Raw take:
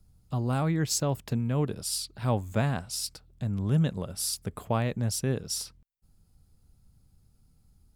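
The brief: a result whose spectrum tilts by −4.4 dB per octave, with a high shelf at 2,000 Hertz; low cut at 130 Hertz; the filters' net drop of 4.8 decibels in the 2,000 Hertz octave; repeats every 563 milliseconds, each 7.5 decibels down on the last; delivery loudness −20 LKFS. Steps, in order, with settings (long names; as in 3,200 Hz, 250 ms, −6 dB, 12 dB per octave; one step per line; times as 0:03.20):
high-pass filter 130 Hz
high-shelf EQ 2,000 Hz +3 dB
parametric band 2,000 Hz −8.5 dB
repeating echo 563 ms, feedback 42%, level −7.5 dB
level +10 dB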